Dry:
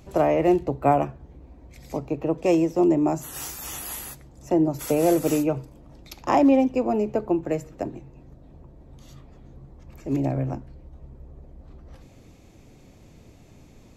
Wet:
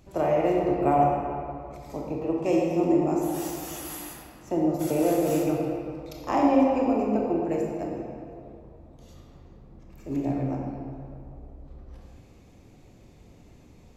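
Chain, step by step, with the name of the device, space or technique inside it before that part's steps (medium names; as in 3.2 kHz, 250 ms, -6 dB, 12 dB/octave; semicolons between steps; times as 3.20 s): stairwell (reverberation RT60 2.6 s, pre-delay 22 ms, DRR -2 dB); trim -6.5 dB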